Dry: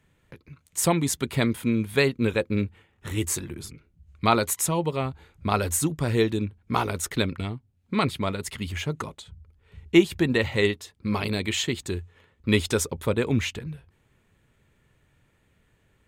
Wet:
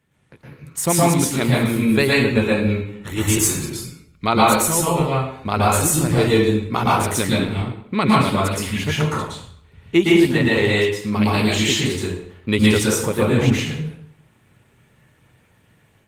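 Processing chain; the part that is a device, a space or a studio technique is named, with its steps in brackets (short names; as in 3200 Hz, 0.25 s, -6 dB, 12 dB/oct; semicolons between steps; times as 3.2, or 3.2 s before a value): far-field microphone of a smart speaker (reverb RT60 0.65 s, pre-delay 0.109 s, DRR -6 dB; HPF 87 Hz 12 dB/oct; AGC gain up to 6 dB; gain -1 dB; Opus 24 kbps 48000 Hz)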